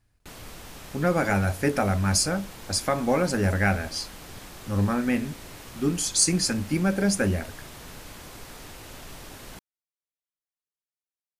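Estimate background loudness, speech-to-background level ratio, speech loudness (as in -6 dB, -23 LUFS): -42.5 LUFS, 17.5 dB, -25.0 LUFS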